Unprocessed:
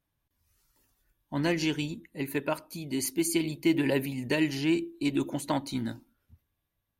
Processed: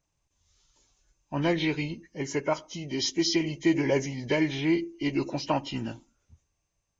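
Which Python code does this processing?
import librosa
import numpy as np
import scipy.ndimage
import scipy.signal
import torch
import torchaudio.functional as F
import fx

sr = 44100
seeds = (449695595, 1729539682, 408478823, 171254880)

y = fx.freq_compress(x, sr, knee_hz=1500.0, ratio=1.5)
y = fx.graphic_eq_15(y, sr, hz=(100, 250, 1600), db=(-5, -7, -5))
y = y * librosa.db_to_amplitude(4.5)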